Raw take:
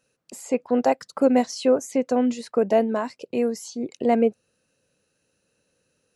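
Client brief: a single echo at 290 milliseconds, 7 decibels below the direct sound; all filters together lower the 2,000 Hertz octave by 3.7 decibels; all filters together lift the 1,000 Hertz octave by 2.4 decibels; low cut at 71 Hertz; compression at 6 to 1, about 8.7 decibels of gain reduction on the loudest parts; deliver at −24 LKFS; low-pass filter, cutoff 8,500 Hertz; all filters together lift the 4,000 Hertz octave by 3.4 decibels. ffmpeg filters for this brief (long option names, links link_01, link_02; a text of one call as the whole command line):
ffmpeg -i in.wav -af "highpass=71,lowpass=8500,equalizer=frequency=1000:width_type=o:gain=5,equalizer=frequency=2000:width_type=o:gain=-8,equalizer=frequency=4000:width_type=o:gain=6.5,acompressor=threshold=-22dB:ratio=6,aecho=1:1:290:0.447,volume=4dB" out.wav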